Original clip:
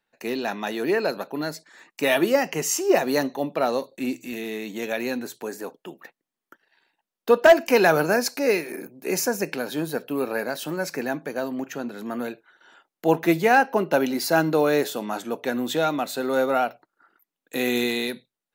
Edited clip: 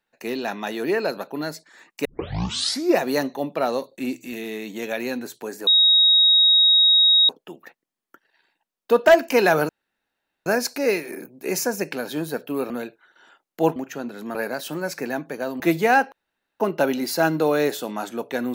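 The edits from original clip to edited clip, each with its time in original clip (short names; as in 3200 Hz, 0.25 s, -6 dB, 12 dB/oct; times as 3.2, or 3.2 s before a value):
2.05 tape start 0.93 s
5.67 add tone 3780 Hz -12 dBFS 1.62 s
8.07 insert room tone 0.77 s
10.31–11.56 swap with 12.15–13.21
13.73 insert room tone 0.48 s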